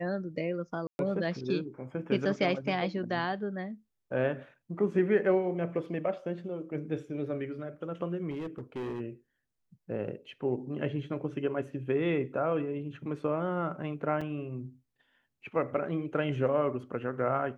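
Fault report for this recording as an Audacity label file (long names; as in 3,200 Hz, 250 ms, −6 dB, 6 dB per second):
0.870000	0.990000	drop-out 121 ms
8.300000	9.010000	clipping −32.5 dBFS
14.210000	14.210000	drop-out 4.6 ms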